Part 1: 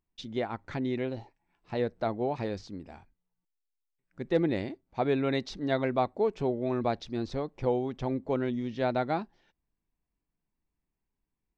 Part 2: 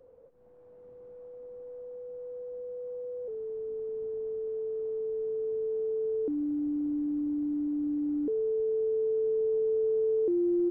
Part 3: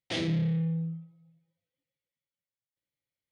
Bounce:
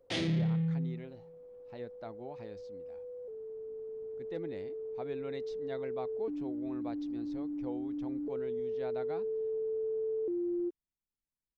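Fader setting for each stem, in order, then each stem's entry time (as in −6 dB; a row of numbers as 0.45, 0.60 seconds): −15.0, −7.0, −2.0 decibels; 0.00, 0.00, 0.00 seconds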